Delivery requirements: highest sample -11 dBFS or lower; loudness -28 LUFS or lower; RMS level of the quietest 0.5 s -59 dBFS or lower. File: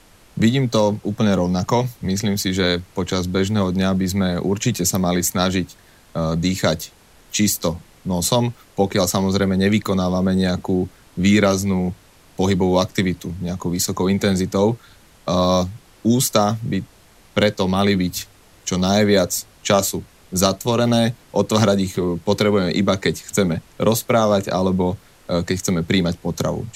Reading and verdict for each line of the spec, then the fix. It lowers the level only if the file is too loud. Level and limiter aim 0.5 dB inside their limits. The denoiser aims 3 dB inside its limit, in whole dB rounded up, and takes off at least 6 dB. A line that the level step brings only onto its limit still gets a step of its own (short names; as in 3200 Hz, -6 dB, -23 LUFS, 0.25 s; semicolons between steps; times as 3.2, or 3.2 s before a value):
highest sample -2.5 dBFS: fail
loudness -19.5 LUFS: fail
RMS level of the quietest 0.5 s -50 dBFS: fail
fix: denoiser 6 dB, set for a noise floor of -50 dBFS; gain -9 dB